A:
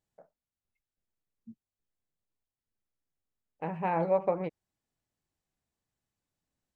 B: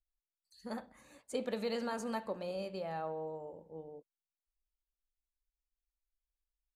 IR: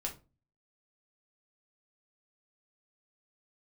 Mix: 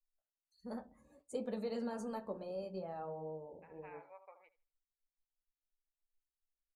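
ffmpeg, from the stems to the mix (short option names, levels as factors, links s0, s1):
-filter_complex "[0:a]highpass=1400,volume=0.158,asplit=2[s0][s1];[s1]volume=0.282[s2];[1:a]equalizer=f=2700:w=0.43:g=-9.5,flanger=delay=9.2:depth=7.2:regen=-38:speed=0.68:shape=triangular,volume=1,asplit=2[s3][s4];[s4]volume=0.422[s5];[2:a]atrim=start_sample=2205[s6];[s5][s6]afir=irnorm=-1:irlink=0[s7];[s2]aecho=0:1:77|154|231|308|385:1|0.35|0.122|0.0429|0.015[s8];[s0][s3][s7][s8]amix=inputs=4:normalize=0,afftdn=nr=13:nf=-66"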